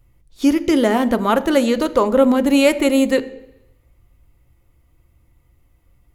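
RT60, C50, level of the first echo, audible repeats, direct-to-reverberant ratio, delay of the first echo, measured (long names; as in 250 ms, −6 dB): 0.85 s, 16.5 dB, no echo audible, no echo audible, 11.0 dB, no echo audible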